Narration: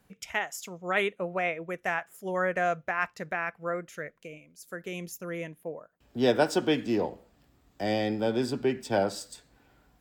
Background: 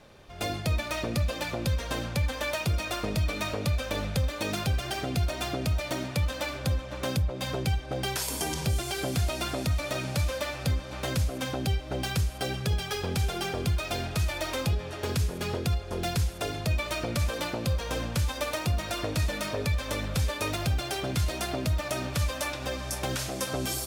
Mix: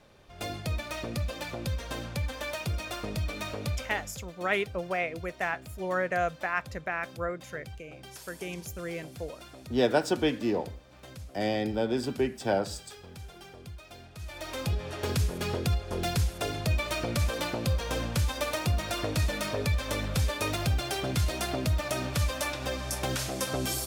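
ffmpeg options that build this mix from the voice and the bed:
ffmpeg -i stem1.wav -i stem2.wav -filter_complex "[0:a]adelay=3550,volume=-1dB[link_01];[1:a]volume=12.5dB,afade=type=out:start_time=3.72:duration=0.43:silence=0.237137,afade=type=in:start_time=14.17:duration=0.77:silence=0.141254[link_02];[link_01][link_02]amix=inputs=2:normalize=0" out.wav

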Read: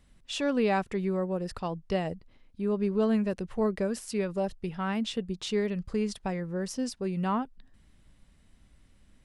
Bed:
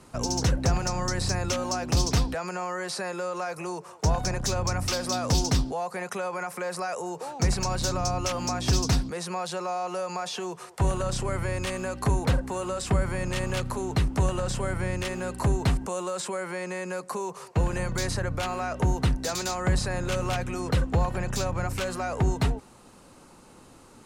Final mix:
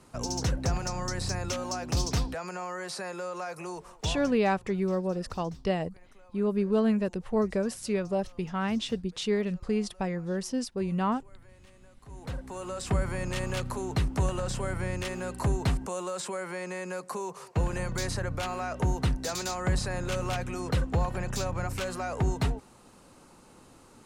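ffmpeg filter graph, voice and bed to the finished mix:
ffmpeg -i stem1.wav -i stem2.wav -filter_complex "[0:a]adelay=3750,volume=1dB[link_01];[1:a]volume=20dB,afade=type=out:start_time=3.87:duration=0.51:silence=0.0707946,afade=type=in:start_time=12.07:duration=0.89:silence=0.0595662[link_02];[link_01][link_02]amix=inputs=2:normalize=0" out.wav

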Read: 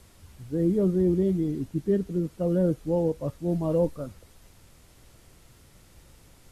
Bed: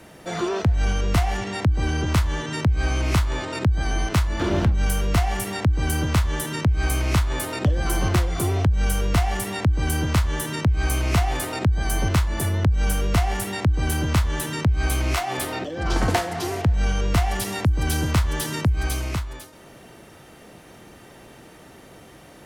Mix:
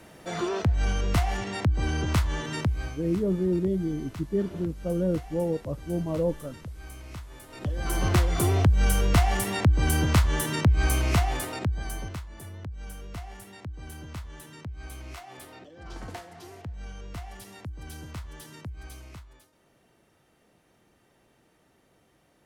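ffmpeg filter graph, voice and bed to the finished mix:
ffmpeg -i stem1.wav -i stem2.wav -filter_complex "[0:a]adelay=2450,volume=-2.5dB[link_01];[1:a]volume=16dB,afade=type=out:start_time=2.58:duration=0.4:silence=0.149624,afade=type=in:start_time=7.48:duration=0.81:silence=0.1,afade=type=out:start_time=10.77:duration=1.44:silence=0.125893[link_02];[link_01][link_02]amix=inputs=2:normalize=0" out.wav

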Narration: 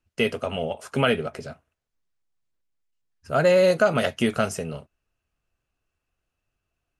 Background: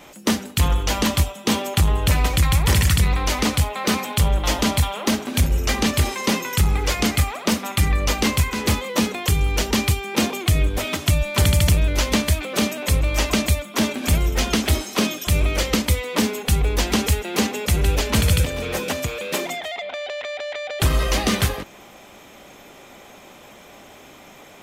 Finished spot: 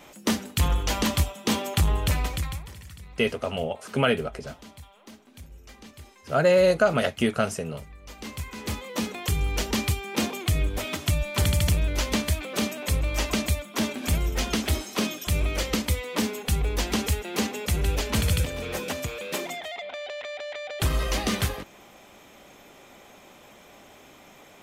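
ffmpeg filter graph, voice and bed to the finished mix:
ffmpeg -i stem1.wav -i stem2.wav -filter_complex "[0:a]adelay=3000,volume=-1dB[link_01];[1:a]volume=16.5dB,afade=type=out:start_time=1.96:duration=0.74:silence=0.0749894,afade=type=in:start_time=8.02:duration=1.39:silence=0.0891251[link_02];[link_01][link_02]amix=inputs=2:normalize=0" out.wav

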